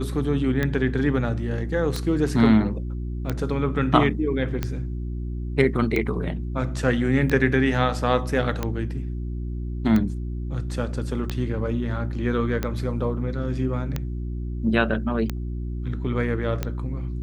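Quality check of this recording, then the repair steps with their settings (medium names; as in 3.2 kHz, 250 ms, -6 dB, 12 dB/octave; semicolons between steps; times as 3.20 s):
hum 60 Hz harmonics 6 -29 dBFS
tick 45 rpm -12 dBFS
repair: de-click; de-hum 60 Hz, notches 6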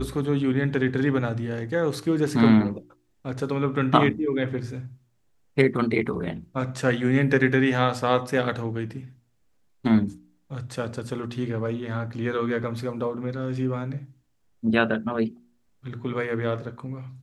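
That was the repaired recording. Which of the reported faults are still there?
nothing left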